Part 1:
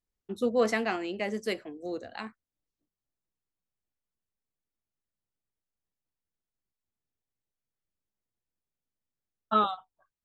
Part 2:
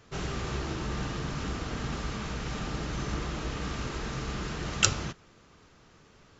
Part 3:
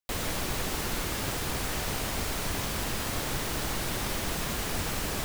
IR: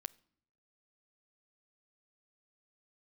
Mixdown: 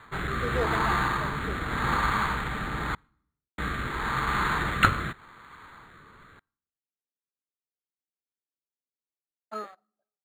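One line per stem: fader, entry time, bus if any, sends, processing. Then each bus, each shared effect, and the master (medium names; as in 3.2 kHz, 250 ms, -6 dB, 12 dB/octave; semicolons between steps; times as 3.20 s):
-5.5 dB, 0.00 s, send -4.5 dB, local Wiener filter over 41 samples; high-pass 350 Hz 12 dB/octave
+0.5 dB, 0.00 s, muted 2.95–3.58 s, send -5 dB, high-order bell 1.4 kHz +15.5 dB
mute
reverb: on, RT60 0.70 s, pre-delay 9 ms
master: rotary cabinet horn 0.85 Hz; decimation joined by straight lines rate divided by 8×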